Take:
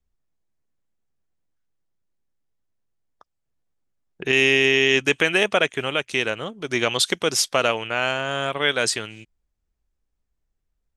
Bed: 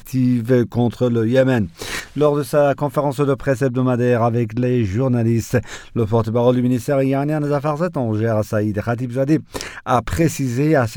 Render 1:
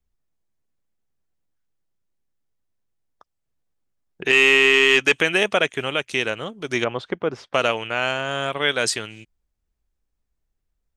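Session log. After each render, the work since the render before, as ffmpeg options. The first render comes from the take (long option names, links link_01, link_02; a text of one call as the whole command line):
ffmpeg -i in.wav -filter_complex "[0:a]asettb=1/sr,asplit=3[link_01][link_02][link_03];[link_01]atrim=end=4.254[link_04];[link_02]atrim=start=4.25:end=5.13,asetpts=PTS-STARTPTS,afade=type=in:duration=0.004:curve=qsin,afade=type=out:start_time=0.876:duration=0.004:curve=qsin,asplit=2[link_05][link_06];[link_06]highpass=frequency=720:poles=1,volume=12dB,asoftclip=type=tanh:threshold=-3dB[link_07];[link_05][link_07]amix=inputs=2:normalize=0,lowpass=frequency=4200:poles=1,volume=-6dB[link_08];[link_03]atrim=start=5.126[link_09];[link_04][link_08]acrossfade=duration=0.004:curve1=hsin:curve2=qsin[link_10];[link_10][link_09]acrossfade=duration=0.004:curve1=qsin:curve2=hsin,asettb=1/sr,asplit=3[link_11][link_12][link_13];[link_11]atrim=end=6.844[link_14];[link_12]atrim=start=6.84:end=7.54,asetpts=PTS-STARTPTS,afade=type=in:duration=0.004:curve=qsin,afade=type=out:start_time=0.696:duration=0.004:curve=qsin,lowpass=1300[link_15];[link_13]atrim=start=7.536[link_16];[link_14][link_15]acrossfade=duration=0.004:curve1=hsin:curve2=qsin[link_17];[link_17][link_16]acrossfade=duration=0.004:curve1=qsin:curve2=hsin" out.wav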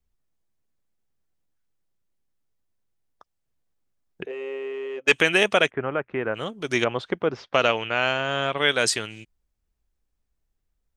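ffmpeg -i in.wav -filter_complex "[0:a]asplit=3[link_01][link_02][link_03];[link_01]afade=type=out:start_time=4.24:duration=0.02[link_04];[link_02]bandpass=frequency=520:width_type=q:width=6.2,afade=type=in:start_time=4.24:duration=0.02,afade=type=out:start_time=5.07:duration=0.02[link_05];[link_03]afade=type=in:start_time=5.07:duration=0.02[link_06];[link_04][link_05][link_06]amix=inputs=3:normalize=0,asplit=3[link_07][link_08][link_09];[link_07]afade=type=out:start_time=5.69:duration=0.02[link_10];[link_08]lowpass=frequency=1600:width=0.5412,lowpass=frequency=1600:width=1.3066,afade=type=in:start_time=5.69:duration=0.02,afade=type=out:start_time=6.34:duration=0.02[link_11];[link_09]afade=type=in:start_time=6.34:duration=0.02[link_12];[link_10][link_11][link_12]amix=inputs=3:normalize=0,asettb=1/sr,asplit=3[link_13][link_14][link_15];[link_13]atrim=end=7.254[link_16];[link_14]atrim=start=7.25:end=8.58,asetpts=PTS-STARTPTS,afade=type=in:duration=0.004:curve=qsin,afade=type=out:start_time=1.326:duration=0.004:curve=qsin,lowpass=frequency=6100:width=0.5412,lowpass=frequency=6100:width=1.3066[link_17];[link_15]atrim=start=8.576[link_18];[link_16][link_17]acrossfade=duration=0.004:curve1=hsin:curve2=qsin[link_19];[link_19][link_18]acrossfade=duration=0.004:curve1=qsin:curve2=hsin" out.wav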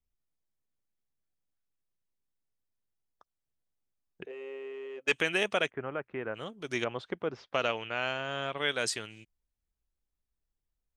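ffmpeg -i in.wav -af "volume=-9.5dB" out.wav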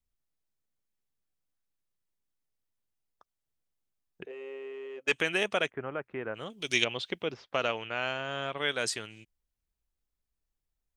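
ffmpeg -i in.wav -filter_complex "[0:a]asettb=1/sr,asplit=3[link_01][link_02][link_03];[link_01]atrim=end=6.504[link_04];[link_02]atrim=start=6.5:end=7.34,asetpts=PTS-STARTPTS,afade=type=in:duration=0.004:curve=qsin,afade=type=out:start_time=0.836:duration=0.004:curve=qsin,highshelf=frequency=2000:width_type=q:width=1.5:gain=10[link_05];[link_03]atrim=start=7.336[link_06];[link_04][link_05]acrossfade=duration=0.004:curve1=hsin:curve2=qsin[link_07];[link_07][link_06]acrossfade=duration=0.004:curve1=qsin:curve2=hsin" out.wav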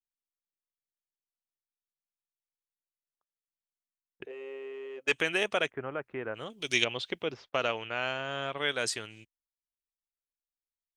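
ffmpeg -i in.wav -af "equalizer=frequency=190:width=4.1:gain=-4,agate=range=-25dB:threshold=-53dB:ratio=16:detection=peak" out.wav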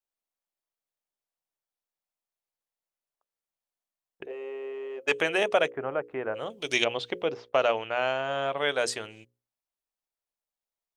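ffmpeg -i in.wav -af "equalizer=frequency=660:width=0.88:gain=9,bandreject=frequency=60:width_type=h:width=6,bandreject=frequency=120:width_type=h:width=6,bandreject=frequency=180:width_type=h:width=6,bandreject=frequency=240:width_type=h:width=6,bandreject=frequency=300:width_type=h:width=6,bandreject=frequency=360:width_type=h:width=6,bandreject=frequency=420:width_type=h:width=6,bandreject=frequency=480:width_type=h:width=6,bandreject=frequency=540:width_type=h:width=6" out.wav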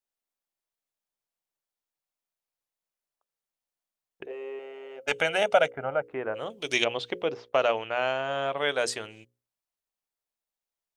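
ffmpeg -i in.wav -filter_complex "[0:a]asettb=1/sr,asplit=3[link_01][link_02][link_03];[link_01]atrim=end=4.594[link_04];[link_02]atrim=start=4.59:end=6.08,asetpts=PTS-STARTPTS,afade=type=in:duration=0.004:curve=qsin,afade=type=out:start_time=1.486:duration=0.004:curve=qsin,aecho=1:1:1.4:0.64,atrim=end_sample=65709[link_05];[link_03]atrim=start=6.076[link_06];[link_04][link_05]acrossfade=duration=0.004:curve1=hsin:curve2=qsin[link_07];[link_07][link_06]acrossfade=duration=0.004:curve1=qsin:curve2=hsin" out.wav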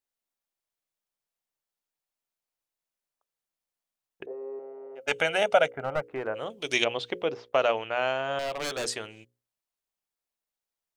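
ffmpeg -i in.wav -filter_complex "[0:a]asplit=3[link_01][link_02][link_03];[link_01]afade=type=out:start_time=4.25:duration=0.02[link_04];[link_02]lowpass=frequency=1100:width=0.5412,lowpass=frequency=1100:width=1.3066,afade=type=in:start_time=4.25:duration=0.02,afade=type=out:start_time=4.95:duration=0.02[link_05];[link_03]afade=type=in:start_time=4.95:duration=0.02[link_06];[link_04][link_05][link_06]amix=inputs=3:normalize=0,asettb=1/sr,asplit=3[link_07][link_08][link_09];[link_07]atrim=end=5.794[link_10];[link_08]atrim=start=5.79:end=6.27,asetpts=PTS-STARTPTS,afade=type=in:duration=0.004:curve=qsin,afade=type=out:start_time=0.476:duration=0.004:curve=qsin,aeval=exprs='clip(val(0),-1,0.0335)':channel_layout=same[link_11];[link_09]atrim=start=6.266[link_12];[link_10][link_11]acrossfade=duration=0.004:curve1=hsin:curve2=qsin[link_13];[link_13][link_12]acrossfade=duration=0.004:curve1=qsin:curve2=hsin,asettb=1/sr,asplit=3[link_14][link_15][link_16];[link_14]atrim=end=8.394[link_17];[link_15]atrim=start=8.39:end=8.87,asetpts=PTS-STARTPTS,afade=type=in:duration=0.004:curve=qsin,afade=type=out:start_time=0.476:duration=0.004:curve=qsin,aeval=exprs='0.0531*(abs(mod(val(0)/0.0531+3,4)-2)-1)':channel_layout=same[link_18];[link_16]atrim=start=8.866[link_19];[link_17][link_18]acrossfade=duration=0.004:curve1=hsin:curve2=qsin[link_20];[link_20][link_19]acrossfade=duration=0.004:curve1=qsin:curve2=hsin" out.wav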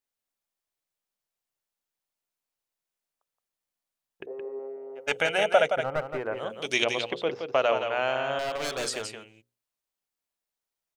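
ffmpeg -i in.wav -af "aecho=1:1:171:0.447" out.wav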